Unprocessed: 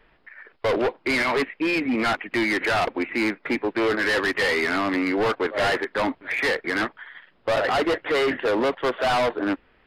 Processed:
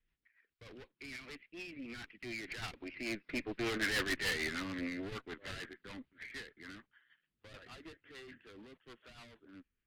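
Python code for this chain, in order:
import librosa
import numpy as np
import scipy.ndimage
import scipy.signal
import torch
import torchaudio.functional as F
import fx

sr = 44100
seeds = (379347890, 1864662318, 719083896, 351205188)

y = fx.doppler_pass(x, sr, speed_mps=17, closest_m=9.0, pass_at_s=3.9)
y = fx.rotary(y, sr, hz=6.7)
y = fx.tone_stack(y, sr, knobs='6-0-2')
y = fx.cheby_harmonics(y, sr, harmonics=(4, 6), levels_db=(-14, -13), full_scale_db=-33.5)
y = F.gain(torch.from_numpy(y), 11.5).numpy()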